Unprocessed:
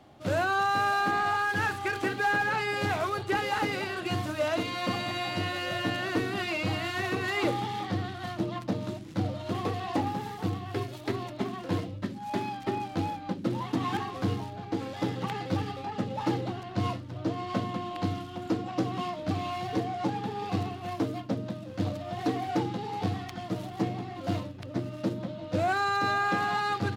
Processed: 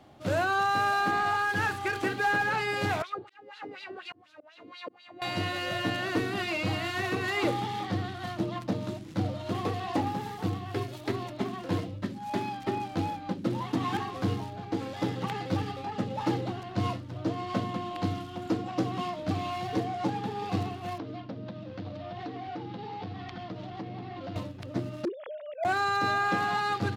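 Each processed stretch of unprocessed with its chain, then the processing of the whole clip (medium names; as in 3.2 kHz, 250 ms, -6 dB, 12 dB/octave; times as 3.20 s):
3.02–5.22 s: slow attack 649 ms + LFO band-pass sine 4.1 Hz 290–4200 Hz
20.98–24.36 s: low-pass 4.8 kHz 24 dB/octave + compression 5:1, threshold -35 dBFS
25.05–25.65 s: formants replaced by sine waves + slow attack 162 ms + hard clipper -24.5 dBFS
whole clip: none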